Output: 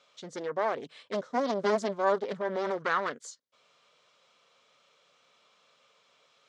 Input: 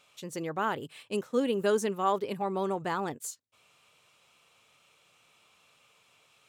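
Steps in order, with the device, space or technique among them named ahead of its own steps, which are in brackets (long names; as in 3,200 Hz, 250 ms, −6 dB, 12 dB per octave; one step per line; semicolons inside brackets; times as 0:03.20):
0:02.41–0:03.19: drawn EQ curve 520 Hz 0 dB, 910 Hz −6 dB, 1,400 Hz +10 dB, 11,000 Hz 0 dB
full-range speaker at full volume (highs frequency-modulated by the lows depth 0.85 ms; loudspeaker in its box 230–6,100 Hz, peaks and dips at 330 Hz −6 dB, 540 Hz +4 dB, 820 Hz −5 dB, 2,600 Hz −9 dB)
level +1.5 dB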